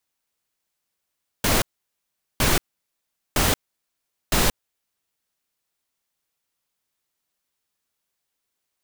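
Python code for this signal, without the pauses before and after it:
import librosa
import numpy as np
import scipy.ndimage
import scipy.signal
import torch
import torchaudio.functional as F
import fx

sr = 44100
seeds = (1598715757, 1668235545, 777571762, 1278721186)

y = fx.noise_burst(sr, seeds[0], colour='pink', on_s=0.18, off_s=0.78, bursts=4, level_db=-19.0)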